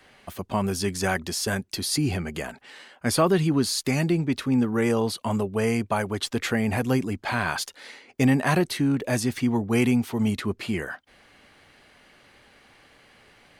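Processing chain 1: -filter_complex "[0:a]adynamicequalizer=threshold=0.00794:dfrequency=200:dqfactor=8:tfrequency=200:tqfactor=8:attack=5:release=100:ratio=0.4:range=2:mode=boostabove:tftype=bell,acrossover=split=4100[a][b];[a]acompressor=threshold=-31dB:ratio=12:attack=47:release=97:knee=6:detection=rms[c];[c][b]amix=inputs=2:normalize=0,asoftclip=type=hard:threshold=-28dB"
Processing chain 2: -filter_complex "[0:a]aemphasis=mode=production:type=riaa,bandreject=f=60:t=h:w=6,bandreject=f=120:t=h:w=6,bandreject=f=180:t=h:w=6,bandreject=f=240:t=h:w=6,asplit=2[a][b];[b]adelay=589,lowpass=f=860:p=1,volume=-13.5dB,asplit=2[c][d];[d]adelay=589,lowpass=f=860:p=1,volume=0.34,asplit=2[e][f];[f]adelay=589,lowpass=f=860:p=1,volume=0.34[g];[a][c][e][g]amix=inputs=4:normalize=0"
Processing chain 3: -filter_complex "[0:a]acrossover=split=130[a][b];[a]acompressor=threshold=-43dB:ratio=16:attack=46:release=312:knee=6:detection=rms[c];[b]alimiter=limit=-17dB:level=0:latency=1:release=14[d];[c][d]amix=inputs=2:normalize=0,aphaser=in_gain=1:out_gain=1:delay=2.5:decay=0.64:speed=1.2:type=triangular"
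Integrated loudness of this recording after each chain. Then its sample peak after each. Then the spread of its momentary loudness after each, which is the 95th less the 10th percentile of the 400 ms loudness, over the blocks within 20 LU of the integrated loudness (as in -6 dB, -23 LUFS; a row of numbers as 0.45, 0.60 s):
-33.5, -22.0, -25.0 LUFS; -28.0, -3.0, -8.0 dBFS; 7, 13, 12 LU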